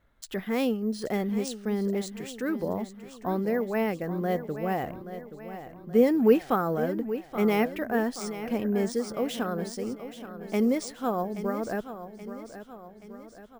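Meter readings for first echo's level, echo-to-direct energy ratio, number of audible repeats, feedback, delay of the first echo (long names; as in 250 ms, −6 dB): −12.0 dB, −10.5 dB, 5, 53%, 827 ms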